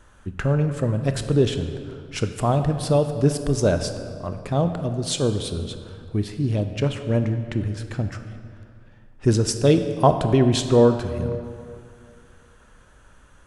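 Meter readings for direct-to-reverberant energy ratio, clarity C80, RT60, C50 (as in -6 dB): 8.0 dB, 9.5 dB, 2.4 s, 9.0 dB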